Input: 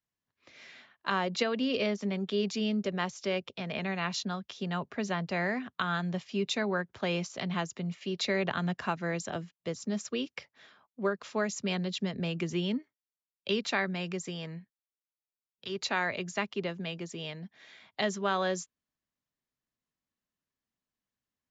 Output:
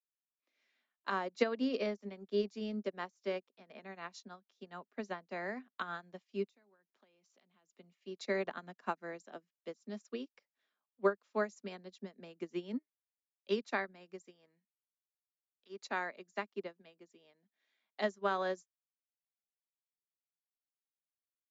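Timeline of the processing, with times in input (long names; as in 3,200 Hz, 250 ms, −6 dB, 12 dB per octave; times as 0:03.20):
0:06.47–0:07.77: downward compressor 16 to 1, threshold −39 dBFS
whole clip: Butterworth high-pass 210 Hz 36 dB per octave; dynamic equaliser 3,000 Hz, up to −8 dB, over −50 dBFS, Q 1.5; expander for the loud parts 2.5 to 1, over −45 dBFS; level +2 dB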